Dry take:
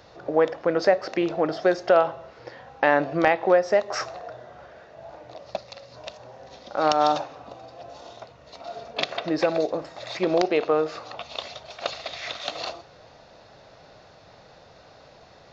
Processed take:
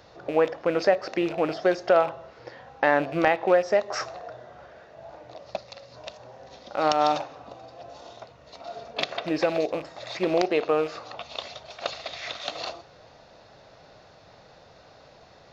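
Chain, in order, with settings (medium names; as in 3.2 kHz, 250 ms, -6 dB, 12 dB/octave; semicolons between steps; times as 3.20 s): rattle on loud lows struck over -39 dBFS, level -29 dBFS; trim -1.5 dB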